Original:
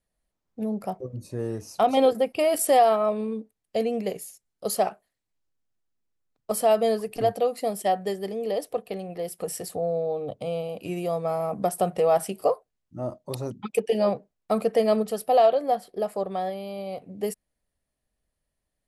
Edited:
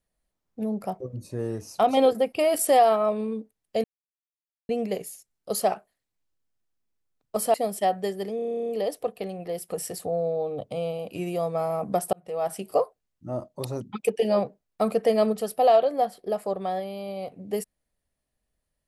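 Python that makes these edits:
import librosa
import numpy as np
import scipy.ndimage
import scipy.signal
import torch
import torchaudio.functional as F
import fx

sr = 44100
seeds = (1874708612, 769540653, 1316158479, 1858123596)

y = fx.edit(x, sr, fx.insert_silence(at_s=3.84, length_s=0.85),
    fx.cut(start_s=6.69, length_s=0.88),
    fx.stutter(start_s=8.39, slice_s=0.03, count=12),
    fx.fade_in_span(start_s=11.83, length_s=0.65), tone=tone)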